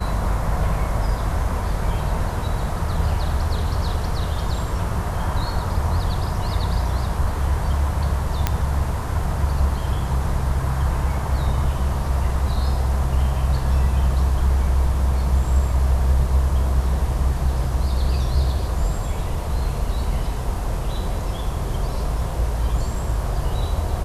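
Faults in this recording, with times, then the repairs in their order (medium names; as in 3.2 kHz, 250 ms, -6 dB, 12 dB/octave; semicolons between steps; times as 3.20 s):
8.47 s: pop -4 dBFS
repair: de-click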